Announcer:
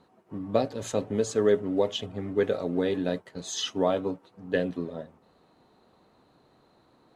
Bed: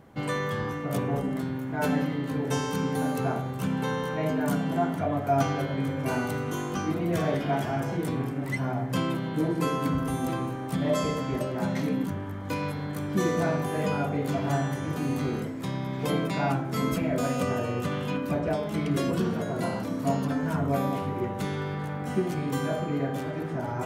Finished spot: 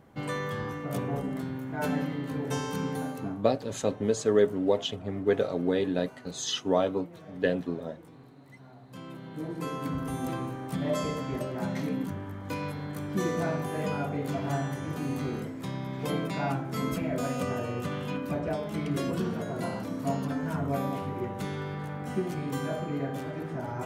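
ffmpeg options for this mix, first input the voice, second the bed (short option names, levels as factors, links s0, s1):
-filter_complex "[0:a]adelay=2900,volume=1[s0];[1:a]volume=5.96,afade=t=out:st=2.89:d=0.51:silence=0.112202,afade=t=in:st=8.83:d=1.43:silence=0.112202[s1];[s0][s1]amix=inputs=2:normalize=0"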